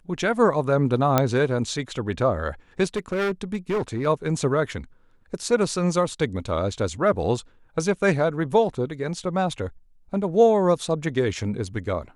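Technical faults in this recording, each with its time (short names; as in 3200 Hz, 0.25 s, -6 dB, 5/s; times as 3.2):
1.18 pop -4 dBFS
2.96–4.07 clipped -20.5 dBFS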